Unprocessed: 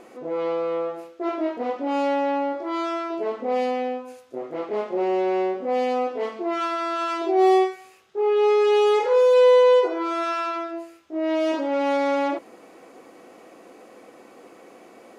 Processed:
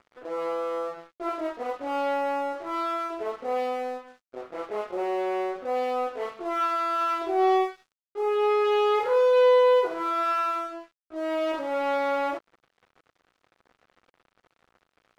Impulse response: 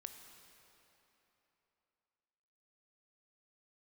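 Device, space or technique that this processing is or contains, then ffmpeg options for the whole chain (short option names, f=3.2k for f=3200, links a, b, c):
pocket radio on a weak battery: -af "highpass=380,lowpass=4.2k,aeval=exprs='sgn(val(0))*max(abs(val(0))-0.00631,0)':c=same,equalizer=f=1.3k:t=o:w=0.45:g=5.5,volume=-2.5dB"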